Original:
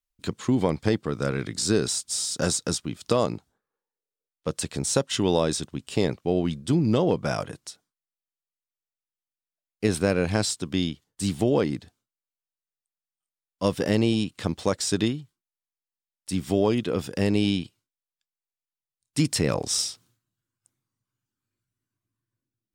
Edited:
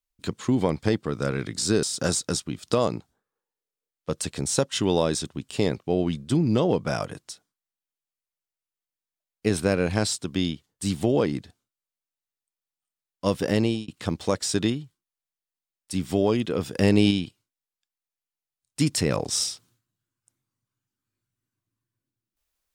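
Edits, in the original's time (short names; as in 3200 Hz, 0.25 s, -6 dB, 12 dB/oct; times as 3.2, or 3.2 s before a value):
1.83–2.21 cut
13.94–14.26 fade out equal-power
17.12–17.49 gain +4 dB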